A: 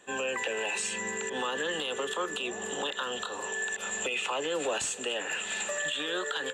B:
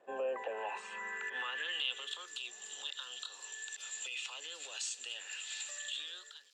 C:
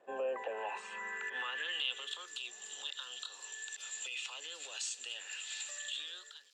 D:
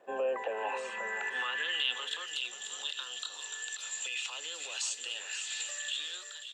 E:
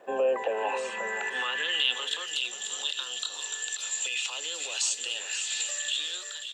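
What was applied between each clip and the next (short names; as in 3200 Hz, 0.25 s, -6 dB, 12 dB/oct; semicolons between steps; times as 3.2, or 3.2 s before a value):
ending faded out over 0.62 s; crackle 460/s -47 dBFS; band-pass sweep 610 Hz -> 4800 Hz, 0.31–2.3; gain +1 dB
nothing audible
echo 0.535 s -9.5 dB; gain +4.5 dB
dynamic EQ 1500 Hz, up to -5 dB, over -49 dBFS, Q 0.83; gain +7.5 dB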